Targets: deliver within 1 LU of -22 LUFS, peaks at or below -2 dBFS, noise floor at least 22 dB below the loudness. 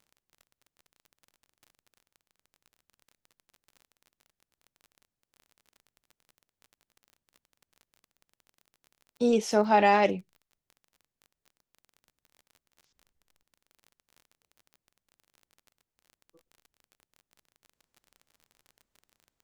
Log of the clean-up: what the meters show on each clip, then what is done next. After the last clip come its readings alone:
tick rate 29 per s; loudness -24.5 LUFS; peak level -10.5 dBFS; loudness target -22.0 LUFS
-> de-click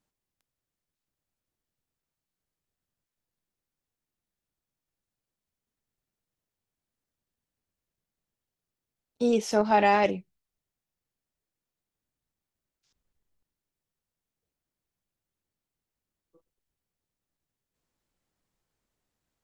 tick rate 0.051 per s; loudness -24.5 LUFS; peak level -10.5 dBFS; loudness target -22.0 LUFS
-> trim +2.5 dB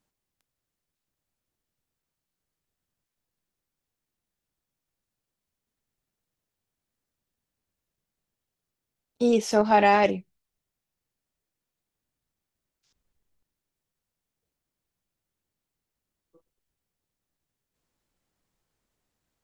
loudness -22.0 LUFS; peak level -8.0 dBFS; noise floor -87 dBFS

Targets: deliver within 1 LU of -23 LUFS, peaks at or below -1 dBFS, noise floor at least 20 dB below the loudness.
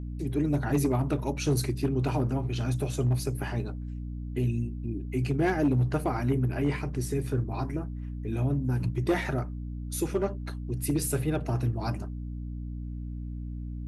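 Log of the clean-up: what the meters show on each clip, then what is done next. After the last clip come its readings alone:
clipped samples 0.4%; clipping level -18.5 dBFS; hum 60 Hz; highest harmonic 300 Hz; hum level -33 dBFS; loudness -30.0 LUFS; peak level -18.5 dBFS; loudness target -23.0 LUFS
-> clip repair -18.5 dBFS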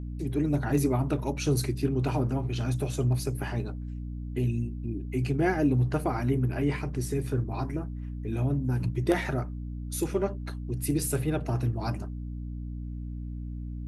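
clipped samples 0.0%; hum 60 Hz; highest harmonic 300 Hz; hum level -33 dBFS
-> de-hum 60 Hz, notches 5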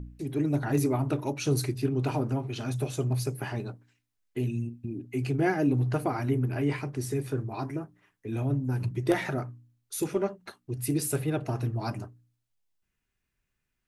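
hum not found; loudness -30.0 LUFS; peak level -10.5 dBFS; loudness target -23.0 LUFS
-> trim +7 dB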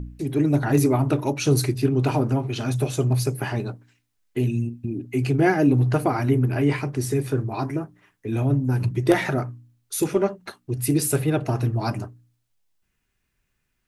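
loudness -23.0 LUFS; peak level -3.5 dBFS; noise floor -74 dBFS

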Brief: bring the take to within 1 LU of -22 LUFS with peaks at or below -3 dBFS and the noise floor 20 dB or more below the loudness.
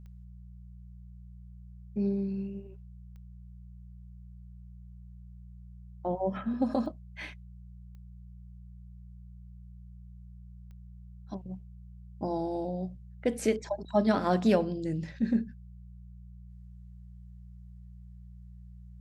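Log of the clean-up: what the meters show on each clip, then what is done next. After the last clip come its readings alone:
clicks found 5; hum 60 Hz; highest harmonic 180 Hz; hum level -45 dBFS; loudness -31.5 LUFS; peak level -13.0 dBFS; loudness target -22.0 LUFS
-> de-click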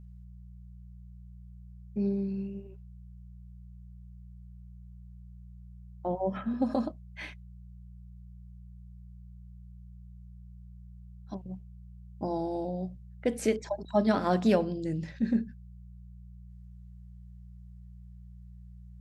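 clicks found 0; hum 60 Hz; highest harmonic 180 Hz; hum level -45 dBFS
-> de-hum 60 Hz, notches 3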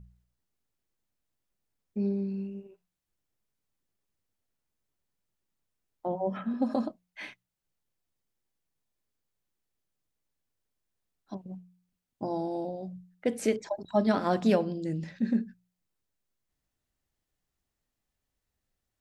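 hum not found; loudness -31.0 LUFS; peak level -12.5 dBFS; loudness target -22.0 LUFS
-> trim +9 dB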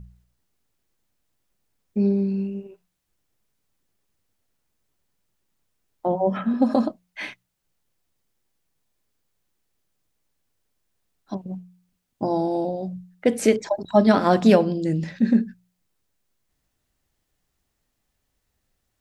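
loudness -22.0 LUFS; peak level -3.5 dBFS; noise floor -76 dBFS

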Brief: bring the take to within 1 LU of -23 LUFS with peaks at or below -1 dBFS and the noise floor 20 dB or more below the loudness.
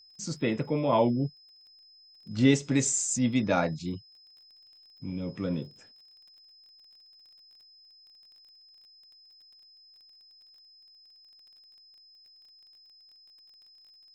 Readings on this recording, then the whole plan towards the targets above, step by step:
tick rate 23 per s; steady tone 5.1 kHz; tone level -54 dBFS; loudness -28.0 LUFS; peak level -10.5 dBFS; loudness target -23.0 LUFS
-> de-click; band-stop 5.1 kHz, Q 30; trim +5 dB

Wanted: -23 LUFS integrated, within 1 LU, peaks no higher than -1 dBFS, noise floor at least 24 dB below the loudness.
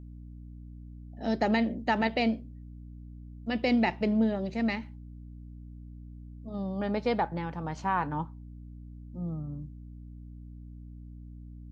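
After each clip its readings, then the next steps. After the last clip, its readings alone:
hum 60 Hz; highest harmonic 300 Hz; hum level -41 dBFS; loudness -30.5 LUFS; peak level -13.0 dBFS; loudness target -23.0 LUFS
-> hum notches 60/120/180/240/300 Hz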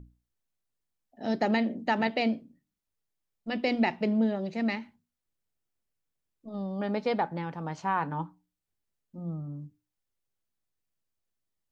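hum not found; loudness -30.5 LUFS; peak level -13.0 dBFS; loudness target -23.0 LUFS
-> trim +7.5 dB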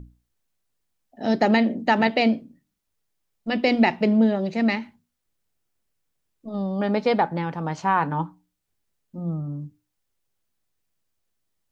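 loudness -23.0 LUFS; peak level -5.5 dBFS; noise floor -78 dBFS

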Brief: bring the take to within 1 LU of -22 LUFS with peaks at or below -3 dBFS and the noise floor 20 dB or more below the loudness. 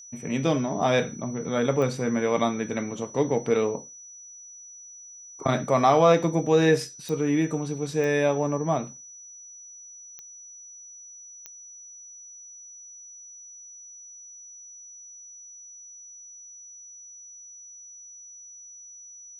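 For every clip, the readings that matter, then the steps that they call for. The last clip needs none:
clicks found 5; steady tone 5.9 kHz; tone level -43 dBFS; loudness -24.5 LUFS; peak level -7.0 dBFS; loudness target -22.0 LUFS
-> de-click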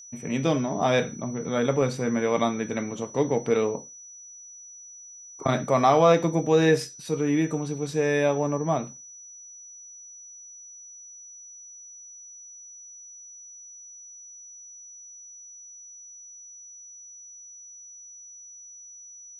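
clicks found 0; steady tone 5.9 kHz; tone level -43 dBFS
-> band-stop 5.9 kHz, Q 30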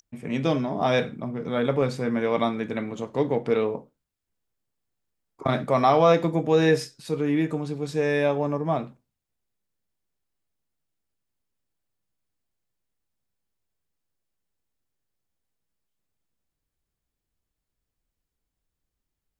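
steady tone not found; loudness -24.5 LUFS; peak level -7.0 dBFS; loudness target -22.0 LUFS
-> trim +2.5 dB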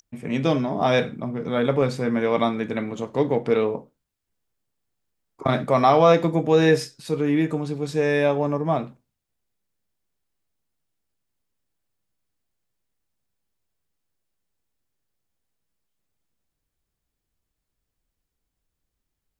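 loudness -22.0 LUFS; peak level -4.5 dBFS; noise floor -82 dBFS

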